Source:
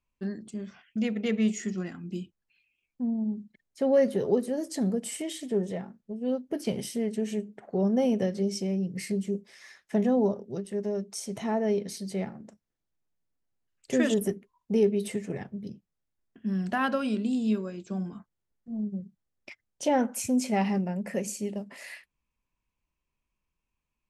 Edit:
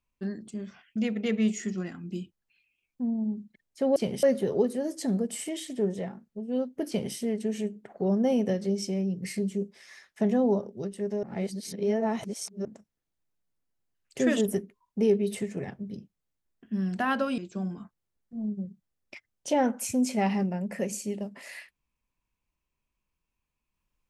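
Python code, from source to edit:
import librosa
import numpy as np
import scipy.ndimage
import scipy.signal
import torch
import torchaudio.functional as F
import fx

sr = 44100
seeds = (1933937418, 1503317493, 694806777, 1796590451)

y = fx.edit(x, sr, fx.duplicate(start_s=6.61, length_s=0.27, to_s=3.96),
    fx.reverse_span(start_s=10.96, length_s=1.42),
    fx.cut(start_s=17.11, length_s=0.62), tone=tone)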